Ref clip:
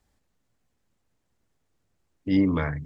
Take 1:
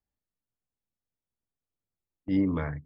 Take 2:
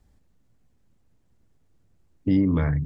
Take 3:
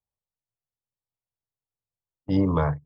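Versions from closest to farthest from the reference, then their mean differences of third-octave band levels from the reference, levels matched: 1, 2, 3; 2.0, 3.0, 4.0 decibels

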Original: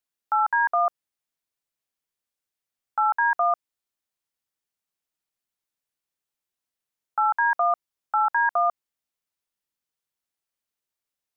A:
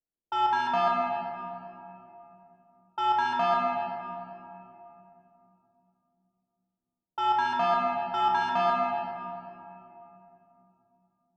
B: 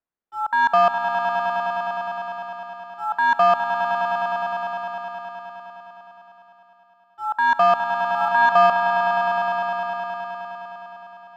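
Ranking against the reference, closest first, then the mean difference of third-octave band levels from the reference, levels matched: B, A; 10.0, 15.0 decibels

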